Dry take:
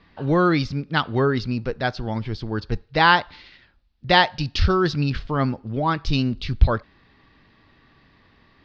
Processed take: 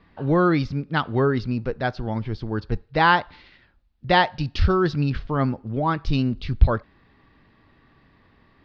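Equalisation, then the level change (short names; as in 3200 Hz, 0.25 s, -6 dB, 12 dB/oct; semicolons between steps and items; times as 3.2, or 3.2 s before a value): high shelf 3100 Hz -10.5 dB; 0.0 dB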